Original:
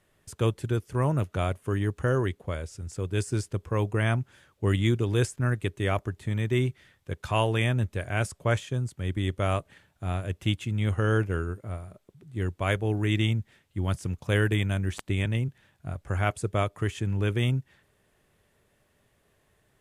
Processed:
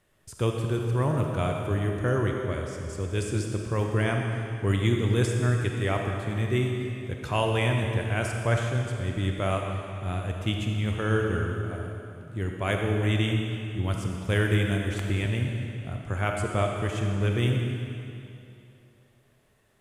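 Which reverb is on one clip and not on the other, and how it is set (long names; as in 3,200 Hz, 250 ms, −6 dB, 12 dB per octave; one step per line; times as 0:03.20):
comb and all-pass reverb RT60 2.7 s, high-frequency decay 0.95×, pre-delay 5 ms, DRR 1.5 dB
level −1 dB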